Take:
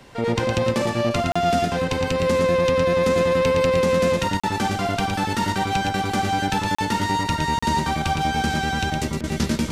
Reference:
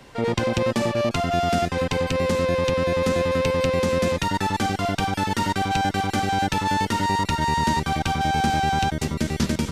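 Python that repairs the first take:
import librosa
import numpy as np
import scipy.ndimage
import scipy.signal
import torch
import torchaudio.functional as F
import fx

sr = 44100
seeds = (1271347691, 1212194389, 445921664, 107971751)

y = fx.fix_interpolate(x, sr, at_s=(1.32, 4.4, 6.75, 7.59), length_ms=35.0)
y = fx.fix_interpolate(y, sr, at_s=(9.21,), length_ms=25.0)
y = fx.fix_echo_inverse(y, sr, delay_ms=113, level_db=-5.5)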